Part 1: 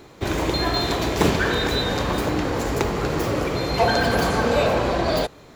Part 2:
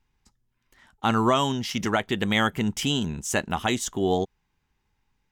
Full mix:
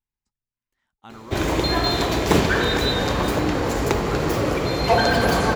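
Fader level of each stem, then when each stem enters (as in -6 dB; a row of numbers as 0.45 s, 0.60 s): +1.5 dB, -20.0 dB; 1.10 s, 0.00 s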